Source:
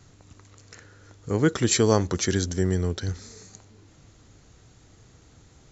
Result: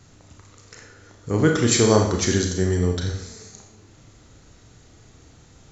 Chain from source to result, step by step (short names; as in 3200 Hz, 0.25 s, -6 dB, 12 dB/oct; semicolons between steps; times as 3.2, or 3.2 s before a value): Schroeder reverb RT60 0.71 s, combs from 26 ms, DRR 2 dB; gain +2 dB